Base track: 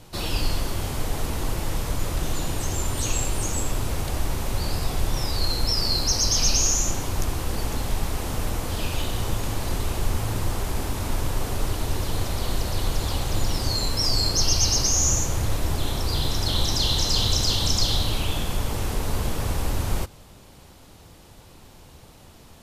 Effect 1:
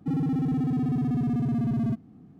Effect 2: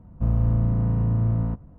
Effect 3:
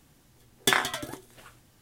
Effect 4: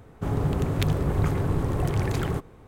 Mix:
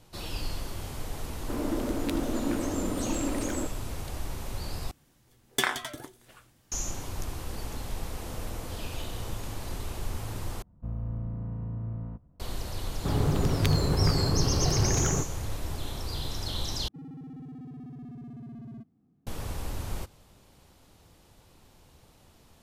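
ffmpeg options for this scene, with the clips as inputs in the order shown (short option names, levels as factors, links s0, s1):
-filter_complex "[4:a]asplit=2[s0][s1];[2:a]asplit=2[s2][s3];[0:a]volume=0.335[s4];[s0]afreqshift=180[s5];[s2]asuperpass=centerf=500:order=4:qfactor=1.6[s6];[s4]asplit=4[s7][s8][s9][s10];[s7]atrim=end=4.914[s11];[3:a]atrim=end=1.81,asetpts=PTS-STARTPTS,volume=0.631[s12];[s8]atrim=start=6.716:end=10.624[s13];[s3]atrim=end=1.78,asetpts=PTS-STARTPTS,volume=0.224[s14];[s9]atrim=start=12.396:end=16.884[s15];[1:a]atrim=end=2.39,asetpts=PTS-STARTPTS,volume=0.141[s16];[s10]atrim=start=19.266[s17];[s5]atrim=end=2.67,asetpts=PTS-STARTPTS,volume=0.447,afade=t=in:d=0.004:c=hsin,afade=t=out:st=2.666:d=0.004:c=hsin,adelay=1270[s18];[s6]atrim=end=1.78,asetpts=PTS-STARTPTS,volume=0.355,afade=t=in:d=0.004:c=hsin,afade=t=out:st=1.776:d=0.004:c=hsin,adelay=7740[s19];[s1]atrim=end=2.67,asetpts=PTS-STARTPTS,volume=0.891,afade=t=in:d=0.004:c=hsin,afade=t=out:st=2.666:d=0.004:c=hsin,adelay=12830[s20];[s11][s12]acrossfade=d=0.004:c1=hsin:c2=hsin[s21];[s21][s13]acrossfade=d=0.004:c1=hsin:c2=hsin[s22];[s22][s14]acrossfade=d=0.004:c1=hsin:c2=hsin[s23];[s23][s15]acrossfade=d=0.004:c1=hsin:c2=hsin[s24];[s24][s16]acrossfade=d=0.004:c1=hsin:c2=hsin[s25];[s25][s17]acrossfade=d=0.004:c1=hsin:c2=hsin[s26];[s26][s18][s19][s20]amix=inputs=4:normalize=0"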